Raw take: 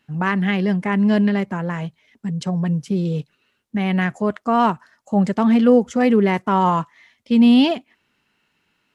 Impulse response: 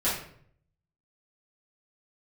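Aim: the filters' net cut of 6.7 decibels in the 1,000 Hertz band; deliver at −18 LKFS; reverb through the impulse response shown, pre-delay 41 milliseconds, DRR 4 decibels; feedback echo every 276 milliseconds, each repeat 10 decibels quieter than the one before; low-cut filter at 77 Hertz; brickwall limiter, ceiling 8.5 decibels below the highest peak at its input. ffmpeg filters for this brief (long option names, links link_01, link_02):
-filter_complex "[0:a]highpass=77,equalizer=frequency=1000:width_type=o:gain=-8.5,alimiter=limit=-13.5dB:level=0:latency=1,aecho=1:1:276|552|828|1104:0.316|0.101|0.0324|0.0104,asplit=2[link_01][link_02];[1:a]atrim=start_sample=2205,adelay=41[link_03];[link_02][link_03]afir=irnorm=-1:irlink=0,volume=-14.5dB[link_04];[link_01][link_04]amix=inputs=2:normalize=0,volume=2.5dB"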